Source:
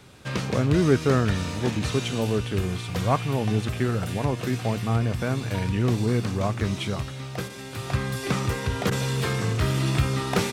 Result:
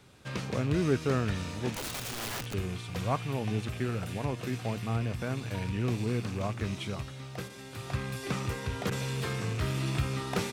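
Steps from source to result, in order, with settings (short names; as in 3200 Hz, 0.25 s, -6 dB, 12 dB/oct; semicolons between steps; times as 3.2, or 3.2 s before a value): rattling part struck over -27 dBFS, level -29 dBFS; 1.73–2.54 wrapped overs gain 24 dB; gain -7.5 dB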